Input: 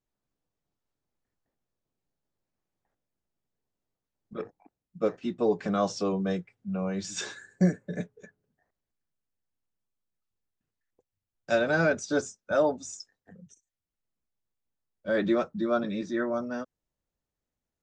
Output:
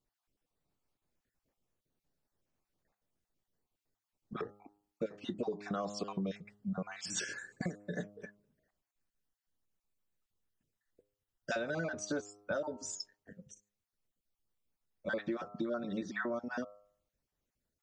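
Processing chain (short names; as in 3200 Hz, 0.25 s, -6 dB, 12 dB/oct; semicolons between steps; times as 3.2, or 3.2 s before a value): random spectral dropouts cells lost 29%; de-hum 102.6 Hz, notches 13; 7.62–8.16 low shelf 460 Hz -7 dB; compressor 12:1, threshold -35 dBFS, peak gain reduction 16 dB; gain +2 dB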